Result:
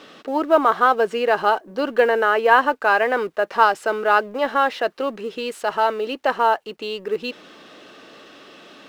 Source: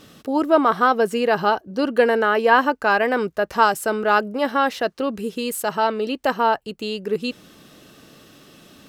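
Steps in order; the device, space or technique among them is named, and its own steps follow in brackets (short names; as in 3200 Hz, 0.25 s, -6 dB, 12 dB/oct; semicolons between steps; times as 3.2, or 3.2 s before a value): phone line with mismatched companding (BPF 380–3600 Hz; G.711 law mismatch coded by mu); gain +1 dB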